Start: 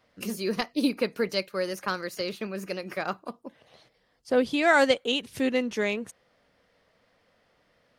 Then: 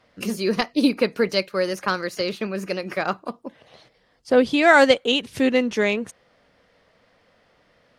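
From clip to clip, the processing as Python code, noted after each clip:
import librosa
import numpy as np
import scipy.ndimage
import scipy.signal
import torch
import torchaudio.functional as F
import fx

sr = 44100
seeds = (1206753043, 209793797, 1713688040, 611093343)

y = fx.high_shelf(x, sr, hz=12000.0, db=-12.0)
y = F.gain(torch.from_numpy(y), 6.5).numpy()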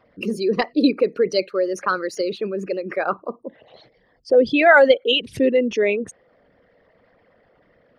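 y = fx.envelope_sharpen(x, sr, power=2.0)
y = F.gain(torch.from_numpy(y), 2.0).numpy()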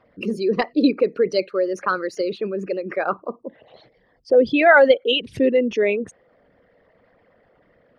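y = fx.high_shelf(x, sr, hz=6200.0, db=-10.5)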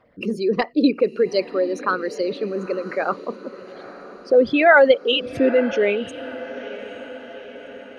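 y = fx.echo_diffused(x, sr, ms=904, feedback_pct=58, wet_db=-16.0)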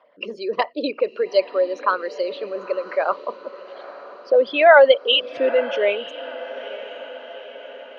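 y = fx.cabinet(x, sr, low_hz=480.0, low_slope=12, high_hz=5300.0, hz=(600.0, 1000.0, 3100.0), db=(9, 9, 8))
y = F.gain(torch.from_numpy(y), -2.0).numpy()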